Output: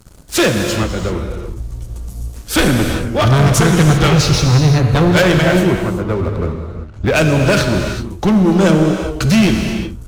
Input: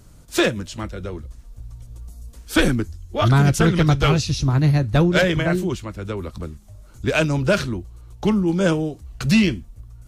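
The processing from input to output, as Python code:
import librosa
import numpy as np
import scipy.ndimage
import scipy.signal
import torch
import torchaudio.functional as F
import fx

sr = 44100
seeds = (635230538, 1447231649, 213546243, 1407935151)

y = fx.lowpass(x, sr, hz=fx.line((5.66, 1300.0), (7.14, 3200.0)), slope=12, at=(5.66, 7.14), fade=0.02)
y = fx.leveller(y, sr, passes=3)
y = fx.rev_gated(y, sr, seeds[0], gate_ms=410, shape='flat', drr_db=3.5)
y = y * 10.0 ** (-1.0 / 20.0)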